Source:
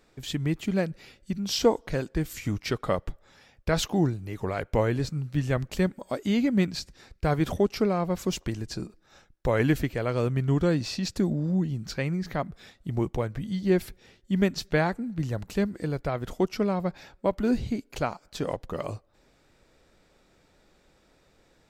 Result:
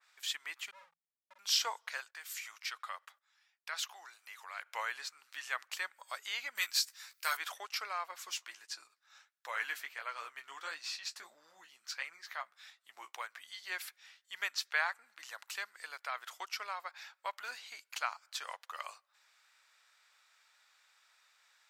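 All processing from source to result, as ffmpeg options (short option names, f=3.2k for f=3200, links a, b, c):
-filter_complex "[0:a]asettb=1/sr,asplit=3[a][b][c];[a]atrim=end=0.714[d];[b]atrim=start=0.71:end=1.39,asetpts=PTS-STARTPTS,afade=t=in:d=0.004:c=qsin,afade=t=out:st=0.676:d=0.004:c=qsin,asuperpass=centerf=180:order=4:qfactor=2.8,asoftclip=type=hard:threshold=-30.5dB,asplit=2[e][f];[f]adelay=49,volume=-6dB[g];[e][g]amix=inputs=2:normalize=0,atrim=end_sample=29988[h];[c]atrim=start=1.386[i];[d][h]acrossfade=d=0.004:c1=hsin:c2=qsin[j];[j][i]acrossfade=d=0.004:c1=qsin:c2=hsin,asettb=1/sr,asplit=3[k][l][m];[k]atrim=end=2.004[n];[l]atrim=start=2:end=4.66,asetpts=PTS-STARTPTS,afade=t=in:d=0.004:c=qsin,afade=t=out:st=2.656:d=0.004:c=qsin,agate=range=-15dB:threshold=-49dB:ratio=16:release=100:detection=peak,highpass=450,acompressor=threshold=-43dB:ratio=1.5:attack=3.2:release=140:knee=1:detection=peak[o];[m]atrim=start=4.656[p];[n][o]acrossfade=d=0.004:c1=hsin:c2=qsin[q];[q][p]acrossfade=d=0.004:c1=qsin:c2=hsin,asettb=1/sr,asplit=3[r][s][t];[r]atrim=end=6.554[u];[s]atrim=start=6.55:end=7.37,asetpts=PTS-STARTPTS,afade=t=in:d=0.004:c=qsin,afade=t=out:st=0.816:d=0.004:c=qsin,aemphasis=mode=production:type=75fm,bandreject=f=740:w=15,asplit=2[v][w];[w]adelay=15,volume=-7dB[x];[v][x]amix=inputs=2:normalize=0,atrim=end_sample=36162[y];[t]atrim=start=7.366[z];[u][y]acrossfade=d=0.004:c1=hsin:c2=qsin[aa];[aa][z]acrossfade=d=0.004:c1=qsin:c2=hsin,asettb=1/sr,asplit=3[ab][ac][ad];[ab]atrim=end=8.114[ae];[ac]atrim=start=8.11:end=13.14,asetpts=PTS-STARTPTS,afade=t=in:d=0.004:c=qsin,afade=t=out:st=5.026:d=0.004:c=qsin,lowshelf=f=260:g=9,flanger=delay=5.9:depth=9.8:regen=-32:speed=1.5:shape=sinusoidal[af];[ad]atrim=start=13.136[ag];[ae][af]acrossfade=d=0.004:c1=hsin:c2=qsin[ah];[ah][ag]acrossfade=d=0.004:c1=qsin:c2=hsin,highpass=f=1.1k:w=0.5412,highpass=f=1.1k:w=1.3066,adynamicequalizer=threshold=0.00447:dfrequency=2500:dqfactor=0.7:tfrequency=2500:tqfactor=0.7:attack=5:release=100:ratio=0.375:range=2.5:mode=cutabove:tftype=highshelf"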